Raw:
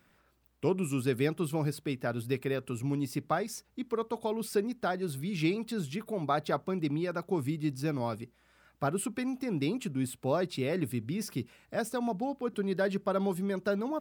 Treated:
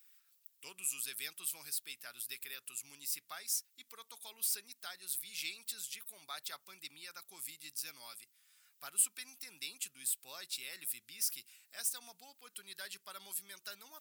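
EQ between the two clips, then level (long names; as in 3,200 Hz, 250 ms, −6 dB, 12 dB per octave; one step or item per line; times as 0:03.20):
first difference
guitar amp tone stack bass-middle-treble 5-5-5
low-shelf EQ 63 Hz −12 dB
+13.0 dB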